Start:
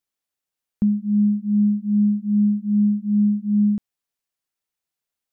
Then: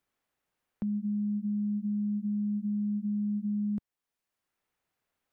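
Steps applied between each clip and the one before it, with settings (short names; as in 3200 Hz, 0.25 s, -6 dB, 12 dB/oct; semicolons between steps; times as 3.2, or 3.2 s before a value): limiter -24 dBFS, peak gain reduction 11 dB; three-band squash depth 40%; gain -3 dB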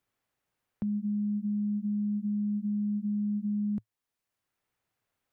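bell 110 Hz +7.5 dB 0.49 oct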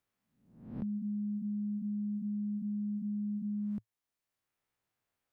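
spectral swells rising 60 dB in 0.67 s; gain -5.5 dB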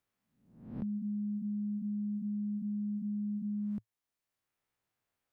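nothing audible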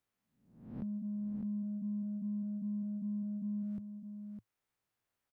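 in parallel at -9.5 dB: soft clip -38 dBFS, distortion -15 dB; on the sum: echo 0.607 s -7.5 dB; gain -4.5 dB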